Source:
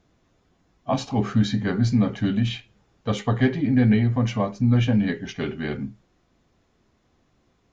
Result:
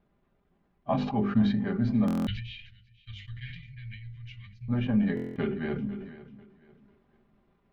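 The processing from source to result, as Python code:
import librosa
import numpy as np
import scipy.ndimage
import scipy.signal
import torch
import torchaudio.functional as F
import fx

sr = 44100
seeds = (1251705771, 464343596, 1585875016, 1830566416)

y = fx.air_absorb(x, sr, metres=390.0)
y = fx.echo_feedback(y, sr, ms=495, feedback_pct=30, wet_db=-17.5)
y = fx.transient(y, sr, attack_db=5, sustain_db=-6)
y = fx.rider(y, sr, range_db=4, speed_s=2.0)
y = fx.cheby2_bandstop(y, sr, low_hz=290.0, high_hz=790.0, order=4, stop_db=70, at=(2.11, 4.68), fade=0.02)
y = fx.hum_notches(y, sr, base_hz=50, count=10)
y = y + 0.48 * np.pad(y, (int(5.0 * sr / 1000.0), 0))[:len(y)]
y = fx.buffer_glitch(y, sr, at_s=(2.06, 5.15), block=1024, repeats=8)
y = fx.sustainer(y, sr, db_per_s=53.0)
y = F.gain(torch.from_numpy(y), -7.5).numpy()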